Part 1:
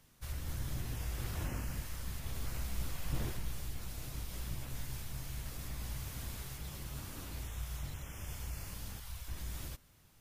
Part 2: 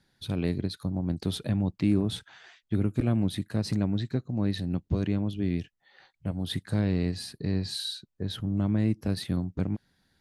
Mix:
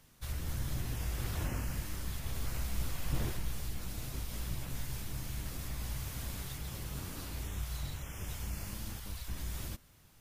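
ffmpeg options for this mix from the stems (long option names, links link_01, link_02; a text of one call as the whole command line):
ffmpeg -i stem1.wav -i stem2.wav -filter_complex "[0:a]volume=2.5dB,asplit=2[link_01][link_02];[1:a]alimiter=limit=-23dB:level=0:latency=1,volume=-16.5dB[link_03];[link_02]apad=whole_len=450000[link_04];[link_03][link_04]sidechaincompress=threshold=-38dB:ratio=8:attack=16:release=390[link_05];[link_01][link_05]amix=inputs=2:normalize=0" out.wav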